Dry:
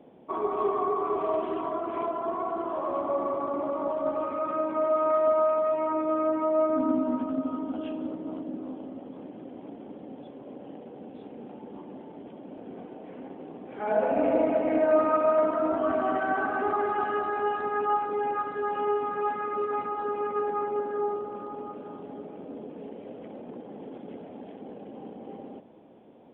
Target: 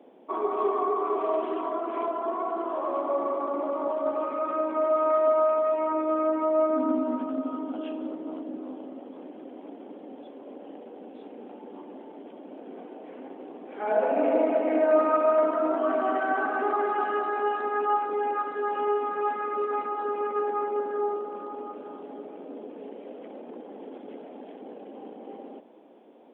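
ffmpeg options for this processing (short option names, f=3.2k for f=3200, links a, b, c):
-af "highpass=f=250:w=0.5412,highpass=f=250:w=1.3066,volume=1dB"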